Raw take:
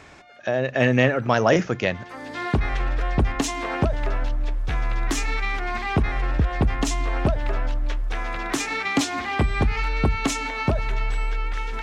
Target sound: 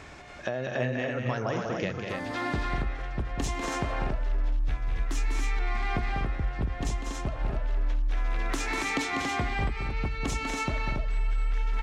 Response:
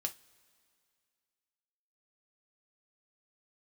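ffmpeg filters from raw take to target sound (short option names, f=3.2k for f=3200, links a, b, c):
-filter_complex "[0:a]lowshelf=f=76:g=7.5,acompressor=threshold=-29dB:ratio=6,asplit=2[a][b];[b]aecho=0:1:195.3|242|279.9:0.501|0.355|0.631[c];[a][c]amix=inputs=2:normalize=0"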